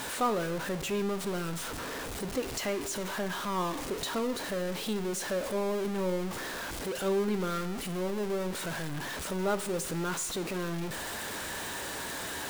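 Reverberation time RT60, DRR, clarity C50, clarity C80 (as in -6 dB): 0.85 s, 10.5 dB, 14.0 dB, 16.0 dB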